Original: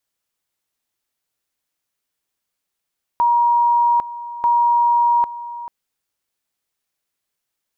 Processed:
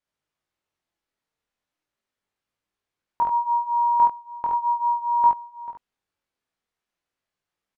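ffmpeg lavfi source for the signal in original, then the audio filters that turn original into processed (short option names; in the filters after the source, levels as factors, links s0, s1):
-f lavfi -i "aevalsrc='pow(10,(-12-15.5*gte(mod(t,1.24),0.8))/20)*sin(2*PI*950*t)':d=2.48:s=44100"
-filter_complex "[0:a]aemphasis=mode=reproduction:type=75fm,asplit=2[s0][s1];[s1]aecho=0:1:29|51|71:0.282|0.531|0.708[s2];[s0][s2]amix=inputs=2:normalize=0,flanger=delay=19:depth=5.3:speed=0.38"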